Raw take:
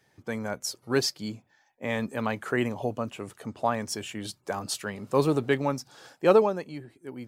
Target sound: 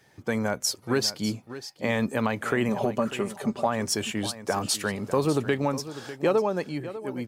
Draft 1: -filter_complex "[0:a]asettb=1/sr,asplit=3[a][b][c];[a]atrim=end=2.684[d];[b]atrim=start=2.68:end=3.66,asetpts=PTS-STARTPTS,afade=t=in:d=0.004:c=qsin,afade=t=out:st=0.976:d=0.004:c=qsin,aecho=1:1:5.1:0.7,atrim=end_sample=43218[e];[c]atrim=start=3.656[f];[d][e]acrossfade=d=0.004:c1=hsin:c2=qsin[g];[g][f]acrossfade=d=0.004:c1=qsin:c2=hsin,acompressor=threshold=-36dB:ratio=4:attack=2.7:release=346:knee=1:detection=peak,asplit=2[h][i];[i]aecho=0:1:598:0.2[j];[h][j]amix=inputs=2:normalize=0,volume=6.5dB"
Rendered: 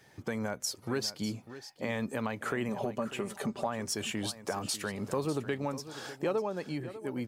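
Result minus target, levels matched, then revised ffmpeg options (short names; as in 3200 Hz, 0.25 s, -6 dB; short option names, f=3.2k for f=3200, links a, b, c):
compressor: peak gain reduction +8 dB
-filter_complex "[0:a]asettb=1/sr,asplit=3[a][b][c];[a]atrim=end=2.684[d];[b]atrim=start=2.68:end=3.66,asetpts=PTS-STARTPTS,afade=t=in:d=0.004:c=qsin,afade=t=out:st=0.976:d=0.004:c=qsin,aecho=1:1:5.1:0.7,atrim=end_sample=43218[e];[c]atrim=start=3.656[f];[d][e]acrossfade=d=0.004:c1=hsin:c2=qsin[g];[g][f]acrossfade=d=0.004:c1=qsin:c2=hsin,acompressor=threshold=-25dB:ratio=4:attack=2.7:release=346:knee=1:detection=peak,asplit=2[h][i];[i]aecho=0:1:598:0.2[j];[h][j]amix=inputs=2:normalize=0,volume=6.5dB"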